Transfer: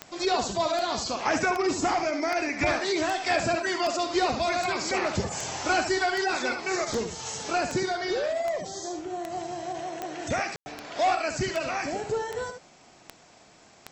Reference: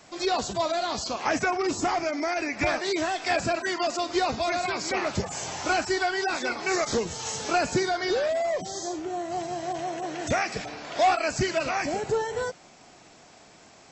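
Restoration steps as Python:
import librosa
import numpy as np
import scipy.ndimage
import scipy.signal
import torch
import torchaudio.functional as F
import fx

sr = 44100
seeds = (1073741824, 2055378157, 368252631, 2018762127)

y = fx.fix_declick_ar(x, sr, threshold=10.0)
y = fx.fix_ambience(y, sr, seeds[0], print_start_s=13.12, print_end_s=13.62, start_s=10.56, end_s=10.66)
y = fx.fix_echo_inverse(y, sr, delay_ms=71, level_db=-8.0)
y = fx.fix_level(y, sr, at_s=6.54, step_db=3.0)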